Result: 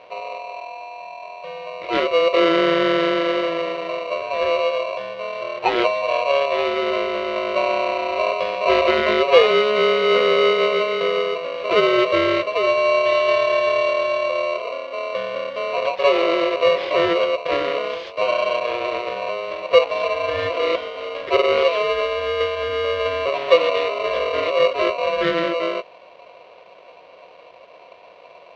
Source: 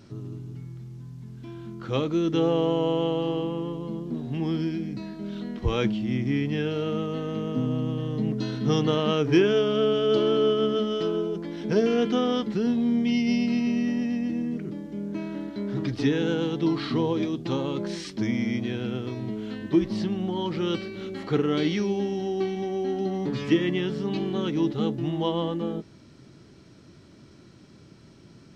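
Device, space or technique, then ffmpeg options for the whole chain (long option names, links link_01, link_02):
ring modulator pedal into a guitar cabinet: -af "aeval=exprs='val(0)*sgn(sin(2*PI*840*n/s))':channel_layout=same,highpass=76,equalizer=frequency=130:width_type=q:width=4:gain=-8,equalizer=frequency=240:width_type=q:width=4:gain=-10,equalizer=frequency=360:width_type=q:width=4:gain=4,equalizer=frequency=530:width_type=q:width=4:gain=6,equalizer=frequency=1200:width_type=q:width=4:gain=-9,lowpass=frequency=3500:width=0.5412,lowpass=frequency=3500:width=1.3066,volume=6dB"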